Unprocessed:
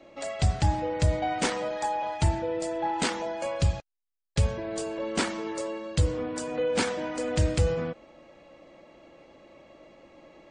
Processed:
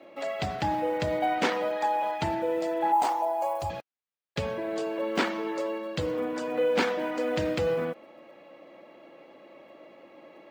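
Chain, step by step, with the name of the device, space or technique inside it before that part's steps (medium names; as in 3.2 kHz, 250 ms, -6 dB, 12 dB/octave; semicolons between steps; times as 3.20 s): early digital voice recorder (band-pass 230–3500 Hz; block-companded coder 7-bit); 2.92–3.70 s: FFT filter 110 Hz 0 dB, 200 Hz -25 dB, 310 Hz -6 dB, 470 Hz -11 dB, 790 Hz +10 dB, 1.5 kHz -12 dB, 3.6 kHz -11 dB, 9.9 kHz +8 dB; trim +2.5 dB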